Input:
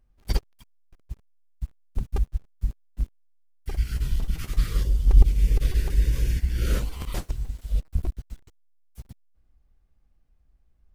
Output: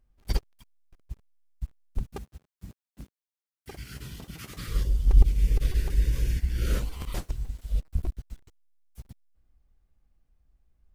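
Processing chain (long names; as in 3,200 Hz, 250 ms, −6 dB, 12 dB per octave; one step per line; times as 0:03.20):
0:02.12–0:04.68: high-pass filter 140 Hz 12 dB per octave
level −2.5 dB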